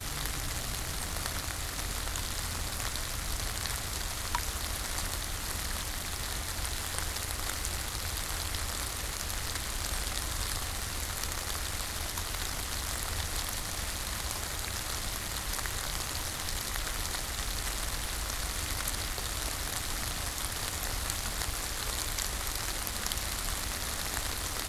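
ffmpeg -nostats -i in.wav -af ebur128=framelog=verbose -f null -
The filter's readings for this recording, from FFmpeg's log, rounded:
Integrated loudness:
  I:         -33.6 LUFS
  Threshold: -43.6 LUFS
Loudness range:
  LRA:         1.1 LU
  Threshold: -53.6 LUFS
  LRA low:   -33.9 LUFS
  LRA high:  -32.9 LUFS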